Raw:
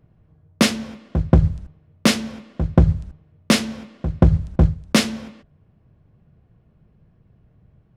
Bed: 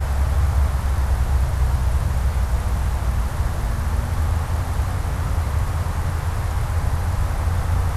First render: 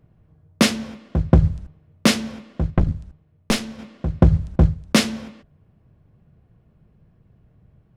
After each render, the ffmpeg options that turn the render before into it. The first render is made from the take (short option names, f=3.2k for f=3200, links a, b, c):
-filter_complex "[0:a]asettb=1/sr,asplit=3[a][b][c];[a]atrim=end=2.704[d];[b]atrim=start=2.7:end=3.79,asetpts=PTS-STARTPTS,afade=t=in:d=0.004:c=qsin,afade=t=out:st=1.086:d=0.004:c=qsin,aeval=exprs='(tanh(3.16*val(0)+0.8)-tanh(0.8))/3.16':c=same[e];[c]atrim=start=3.786[f];[d][e]acrossfade=d=0.004:c1=hsin:c2=qsin[g];[g][f]acrossfade=d=0.004:c1=qsin:c2=hsin"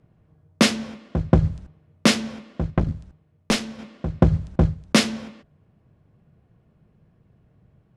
-af "lowpass=10k,lowshelf=f=77:g=-9.5"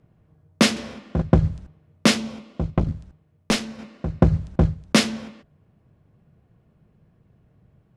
-filter_complex "[0:a]asettb=1/sr,asplit=3[a][b][c];[a]atrim=end=0.724[d];[b]atrim=start=0.72:end=1.22,asetpts=PTS-STARTPTS,afade=t=in:d=0.004:c=qsin,afade=t=out:st=0.496:d=0.004:c=qsin,asplit=2[e][f];[f]adelay=43,volume=-2dB[g];[e][g]amix=inputs=2:normalize=0,atrim=end_sample=22050[h];[c]atrim=start=1.216[i];[d][h]acrossfade=d=0.004:c1=hsin:c2=qsin[j];[j][i]acrossfade=d=0.004:c1=qsin:c2=hsin,asettb=1/sr,asplit=3[k][l][m];[k]atrim=end=2.174[n];[l]atrim=start=2.17:end=2.86,asetpts=PTS-STARTPTS,afade=t=in:d=0.004:c=qsin,afade=t=out:st=0.686:d=0.004:c=qsin,equalizer=f=1.7k:t=o:w=0.34:g=-8.5[o];[m]atrim=start=2.856[p];[n][o]acrossfade=d=0.004:c1=hsin:c2=qsin[q];[q][p]acrossfade=d=0.004:c1=qsin:c2=hsin,asettb=1/sr,asplit=3[r][s][t];[r]atrim=end=3.654[u];[s]atrim=start=3.65:end=4.36,asetpts=PTS-STARTPTS,afade=t=in:d=0.004:c=qsin,afade=t=out:st=0.706:d=0.004:c=qsin,bandreject=f=3.3k:w=12[v];[t]atrim=start=4.356[w];[u][v]acrossfade=d=0.004:c1=hsin:c2=qsin[x];[x][w]acrossfade=d=0.004:c1=qsin:c2=hsin"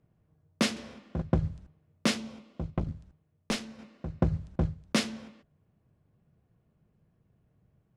-af "volume=-10dB"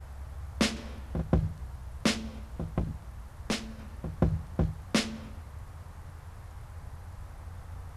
-filter_complex "[1:a]volume=-22.5dB[a];[0:a][a]amix=inputs=2:normalize=0"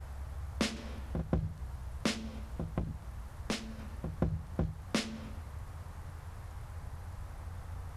-af "acompressor=threshold=-38dB:ratio=1.5"